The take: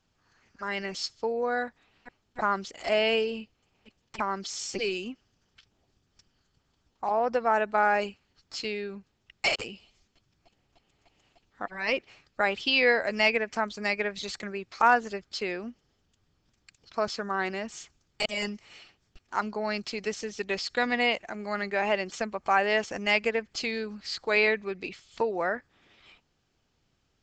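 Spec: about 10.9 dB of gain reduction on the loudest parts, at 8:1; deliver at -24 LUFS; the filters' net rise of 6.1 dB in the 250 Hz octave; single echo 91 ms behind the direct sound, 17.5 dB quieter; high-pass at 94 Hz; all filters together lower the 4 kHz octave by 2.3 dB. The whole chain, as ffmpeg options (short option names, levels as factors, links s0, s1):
-af "highpass=94,equalizer=f=250:t=o:g=7.5,equalizer=f=4000:t=o:g=-3.5,acompressor=threshold=0.0447:ratio=8,aecho=1:1:91:0.133,volume=2.99"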